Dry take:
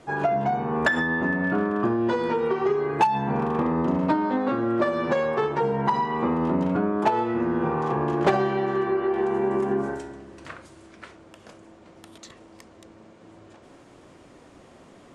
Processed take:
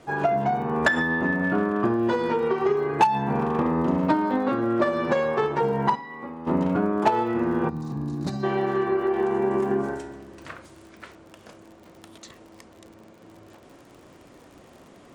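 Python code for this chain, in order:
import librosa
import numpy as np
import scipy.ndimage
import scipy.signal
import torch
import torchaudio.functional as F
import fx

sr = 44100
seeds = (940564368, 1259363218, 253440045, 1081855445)

y = fx.spec_box(x, sr, start_s=7.69, length_s=0.75, low_hz=330.0, high_hz=3600.0, gain_db=-18)
y = fx.cheby_harmonics(y, sr, harmonics=(3,), levels_db=(-22,), full_scale_db=-9.5)
y = fx.dmg_crackle(y, sr, seeds[0], per_s=56.0, level_db=-44.0)
y = fx.comb_fb(y, sr, f0_hz=280.0, decay_s=0.21, harmonics='all', damping=0.0, mix_pct=90, at=(5.94, 6.46), fade=0.02)
y = y * librosa.db_to_amplitude(2.5)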